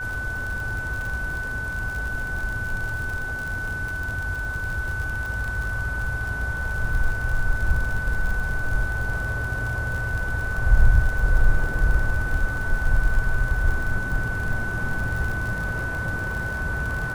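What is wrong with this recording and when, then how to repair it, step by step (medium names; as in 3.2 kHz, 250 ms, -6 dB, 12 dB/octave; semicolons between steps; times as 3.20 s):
crackle 55 per s -28 dBFS
whine 1.5 kHz -28 dBFS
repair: de-click; band-stop 1.5 kHz, Q 30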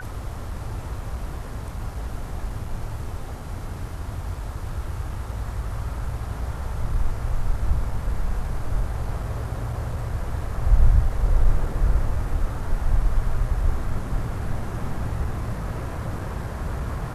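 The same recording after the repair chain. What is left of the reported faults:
nothing left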